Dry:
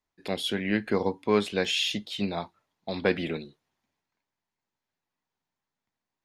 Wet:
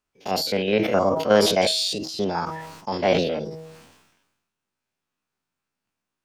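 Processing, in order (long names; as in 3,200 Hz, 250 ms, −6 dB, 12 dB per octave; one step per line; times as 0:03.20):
spectrum averaged block by block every 50 ms
dynamic equaliser 520 Hz, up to +4 dB, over −40 dBFS, Q 1.2
formants moved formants +5 semitones
hum removal 159.9 Hz, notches 6
level that may fall only so fast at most 50 dB per second
level +4.5 dB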